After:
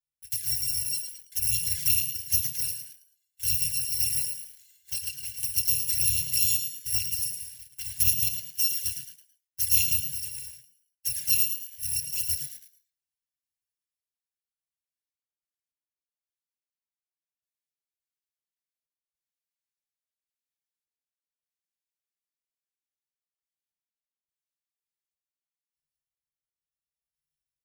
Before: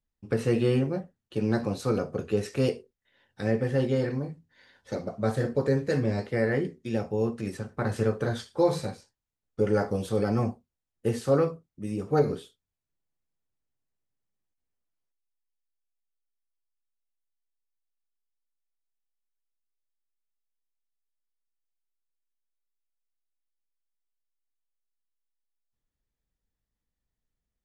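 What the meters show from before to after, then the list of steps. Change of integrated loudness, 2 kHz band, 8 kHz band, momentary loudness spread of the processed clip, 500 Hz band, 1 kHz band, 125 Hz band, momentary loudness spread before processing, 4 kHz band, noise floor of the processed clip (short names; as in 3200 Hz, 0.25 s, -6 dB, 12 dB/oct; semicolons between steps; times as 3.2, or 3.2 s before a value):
+3.5 dB, -3.0 dB, +22.5 dB, 14 LU, under -40 dB, under -40 dB, -12.0 dB, 10 LU, +13.0 dB, under -85 dBFS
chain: FFT order left unsorted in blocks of 256 samples; random-step tremolo, depth 90%; high shelf 2800 Hz +4 dB; envelope flanger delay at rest 4.6 ms, full sweep at -22 dBFS; HPF 75 Hz 12 dB/oct; bell 140 Hz +5.5 dB 0.77 oct; frequency-shifting echo 0.109 s, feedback 38%, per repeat +54 Hz, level -8 dB; in parallel at -4.5 dB: requantised 8-bit, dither none; on the sum: brick-wall FIR band-stop 170–1500 Hz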